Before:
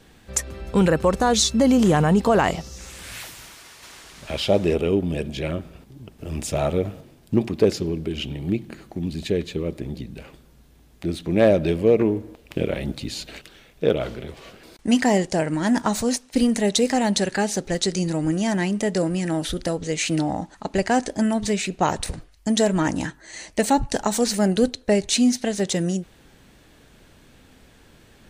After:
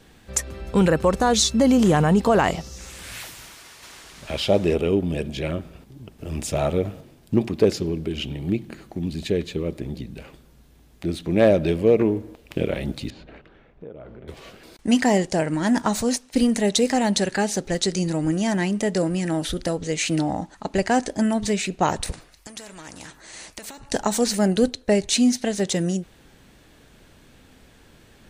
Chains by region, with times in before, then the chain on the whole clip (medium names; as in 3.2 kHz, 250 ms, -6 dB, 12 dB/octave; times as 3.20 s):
13.10–14.28 s: low-pass 1.4 kHz + compression 4:1, threshold -39 dBFS
22.12–23.89 s: band-stop 3.1 kHz, Q 18 + compression, threshold -28 dBFS + spectrum-flattening compressor 2:1
whole clip: none